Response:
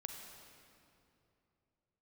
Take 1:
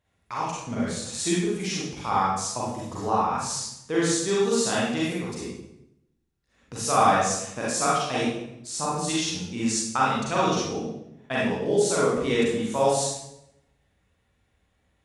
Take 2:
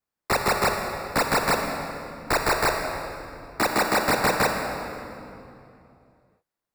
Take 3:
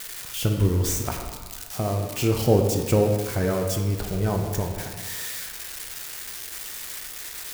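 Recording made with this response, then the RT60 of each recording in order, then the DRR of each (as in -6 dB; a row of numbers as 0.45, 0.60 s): 2; 0.80, 2.8, 1.5 s; -7.5, 3.0, 2.5 dB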